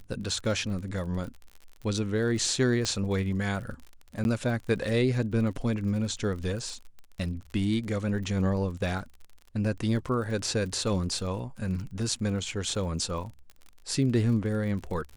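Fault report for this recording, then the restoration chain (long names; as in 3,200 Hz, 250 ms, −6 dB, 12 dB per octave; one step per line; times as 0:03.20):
surface crackle 45 per second −37 dBFS
0:02.85: click −15 dBFS
0:04.24–0:04.25: drop-out 11 ms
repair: click removal
repair the gap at 0:04.24, 11 ms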